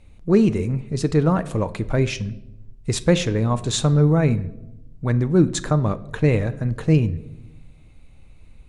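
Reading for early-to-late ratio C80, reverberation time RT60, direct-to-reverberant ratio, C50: 20.0 dB, 0.95 s, 12.0 dB, 17.5 dB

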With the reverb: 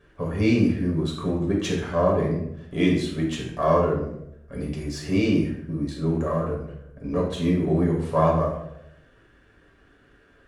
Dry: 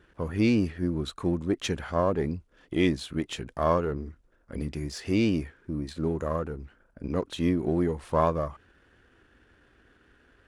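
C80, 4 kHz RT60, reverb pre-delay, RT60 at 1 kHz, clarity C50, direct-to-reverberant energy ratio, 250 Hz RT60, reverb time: 7.5 dB, 0.50 s, 7 ms, 0.70 s, 4.0 dB, -3.0 dB, 0.85 s, 0.80 s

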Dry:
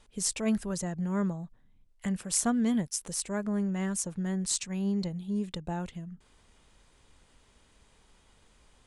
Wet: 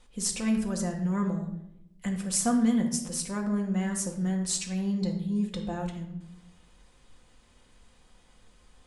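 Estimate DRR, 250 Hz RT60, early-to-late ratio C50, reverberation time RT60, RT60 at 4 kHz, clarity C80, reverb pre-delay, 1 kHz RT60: 1.0 dB, 1.2 s, 8.0 dB, 0.80 s, 0.60 s, 10.5 dB, 4 ms, 0.70 s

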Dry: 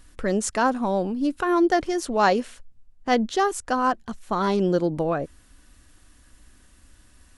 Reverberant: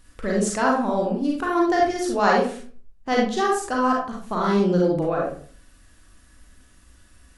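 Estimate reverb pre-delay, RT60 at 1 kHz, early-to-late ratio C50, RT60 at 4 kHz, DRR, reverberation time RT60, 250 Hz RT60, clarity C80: 34 ms, 0.45 s, 1.5 dB, 0.30 s, -3.0 dB, 0.45 s, 0.50 s, 8.0 dB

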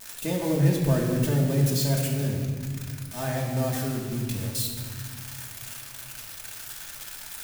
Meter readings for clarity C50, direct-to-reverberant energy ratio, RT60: 2.5 dB, -3.5 dB, 1.9 s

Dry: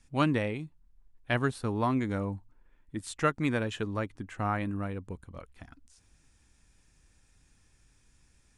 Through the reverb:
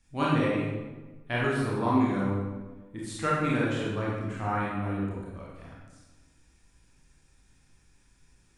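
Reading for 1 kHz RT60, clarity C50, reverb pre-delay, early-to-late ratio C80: 1.2 s, -1.5 dB, 24 ms, 2.0 dB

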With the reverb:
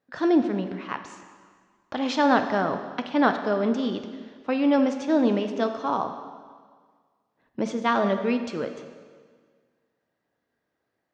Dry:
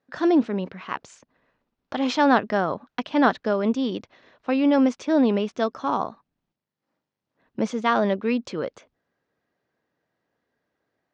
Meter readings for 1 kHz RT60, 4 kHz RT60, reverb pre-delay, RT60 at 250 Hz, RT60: 1.7 s, 1.6 s, 4 ms, 1.6 s, 1.7 s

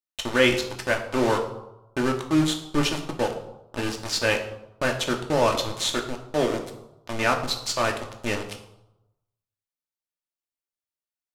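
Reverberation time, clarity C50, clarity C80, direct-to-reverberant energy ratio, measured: 0.90 s, 9.0 dB, 11.5 dB, 2.0 dB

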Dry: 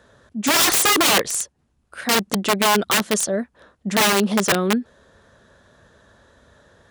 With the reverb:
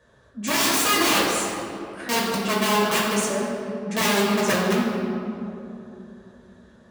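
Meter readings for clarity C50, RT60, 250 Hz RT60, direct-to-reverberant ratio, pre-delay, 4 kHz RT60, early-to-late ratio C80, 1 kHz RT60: -0.5 dB, 3.0 s, 3.8 s, -6.5 dB, 6 ms, 1.4 s, 1.5 dB, 2.6 s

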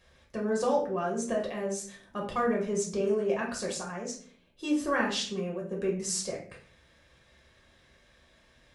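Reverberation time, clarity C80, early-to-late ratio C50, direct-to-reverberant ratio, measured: 0.50 s, 12.0 dB, 8.0 dB, -2.5 dB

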